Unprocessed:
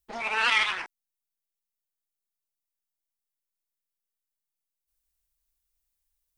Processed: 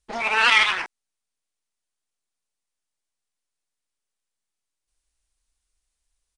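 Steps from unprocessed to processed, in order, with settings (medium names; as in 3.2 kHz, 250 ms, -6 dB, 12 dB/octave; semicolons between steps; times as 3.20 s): resampled via 22.05 kHz; trim +6.5 dB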